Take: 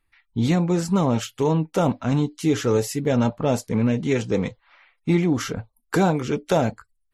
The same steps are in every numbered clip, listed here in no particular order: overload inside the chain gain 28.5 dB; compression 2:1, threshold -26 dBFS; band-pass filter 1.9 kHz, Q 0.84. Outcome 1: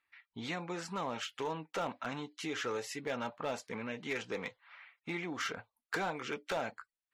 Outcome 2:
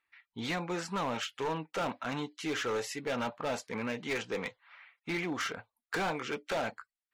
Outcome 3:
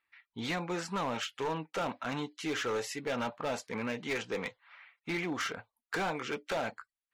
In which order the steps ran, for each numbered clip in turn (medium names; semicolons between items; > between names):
compression > band-pass filter > overload inside the chain; band-pass filter > overload inside the chain > compression; band-pass filter > compression > overload inside the chain